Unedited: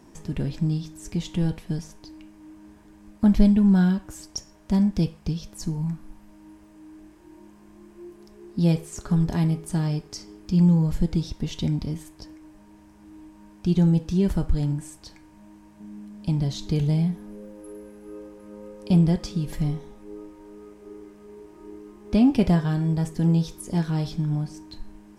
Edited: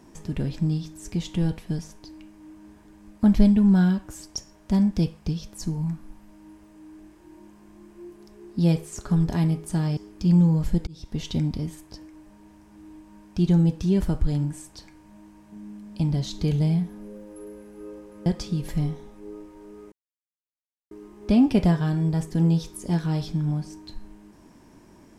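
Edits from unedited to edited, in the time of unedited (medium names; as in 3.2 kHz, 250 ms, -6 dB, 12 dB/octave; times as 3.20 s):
9.97–10.25 s: delete
11.15–11.48 s: fade in
18.54–19.10 s: delete
20.76–21.75 s: mute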